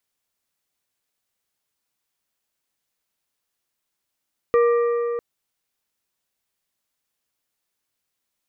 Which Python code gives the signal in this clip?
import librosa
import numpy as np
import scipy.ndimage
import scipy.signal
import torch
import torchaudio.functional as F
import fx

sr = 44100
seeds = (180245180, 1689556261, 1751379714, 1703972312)

y = fx.strike_metal(sr, length_s=0.65, level_db=-13, body='plate', hz=473.0, decay_s=3.7, tilt_db=9.0, modes=4)